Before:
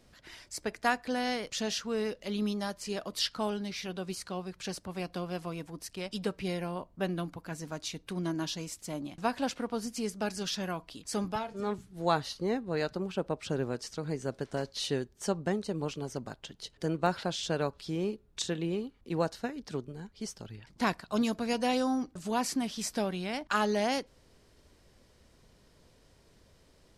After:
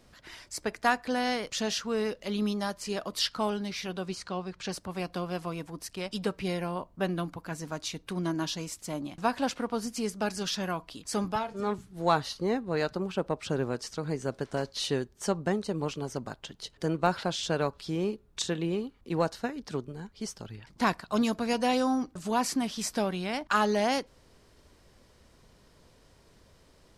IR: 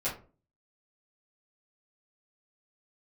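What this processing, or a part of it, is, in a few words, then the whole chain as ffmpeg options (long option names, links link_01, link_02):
parallel distortion: -filter_complex "[0:a]asettb=1/sr,asplit=3[link_01][link_02][link_03];[link_01]atrim=end=4.084[link_04];[link_02]atrim=start=4.08:end=4.72,asetpts=PTS-STARTPTS,afade=type=in:duration=0.004:curve=qsin,afade=type=out:start_time=0.636:duration=0.004:curve=qsin,lowpass=6600[link_05];[link_03]atrim=start=4.716[link_06];[link_04][link_05]acrossfade=duration=0.004:curve1=hsin:curve2=qsin[link_07];[link_07][link_06]acrossfade=duration=0.004:curve1=qsin:curve2=hsin,equalizer=frequency=1100:width=1.5:gain=3,asplit=2[link_08][link_09];[link_09]asoftclip=type=hard:threshold=-23.5dB,volume=-11dB[link_10];[link_08][link_10]amix=inputs=2:normalize=0"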